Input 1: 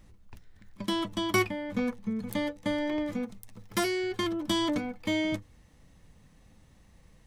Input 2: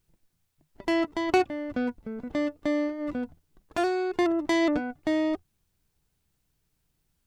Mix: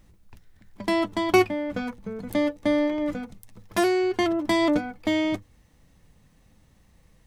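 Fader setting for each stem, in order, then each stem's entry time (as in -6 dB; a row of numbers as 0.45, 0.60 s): -0.5, +1.5 dB; 0.00, 0.00 s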